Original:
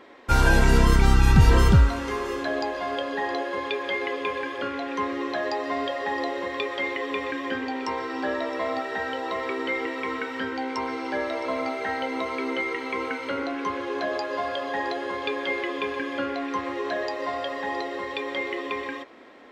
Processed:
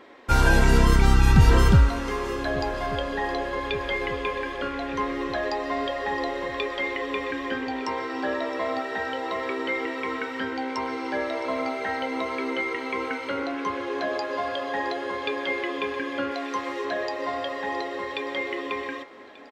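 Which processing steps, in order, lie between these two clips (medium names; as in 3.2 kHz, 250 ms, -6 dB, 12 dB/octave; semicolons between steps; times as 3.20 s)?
16.31–16.85 s: tone controls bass -8 dB, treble +6 dB; on a send: feedback delay 1187 ms, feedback 58%, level -20 dB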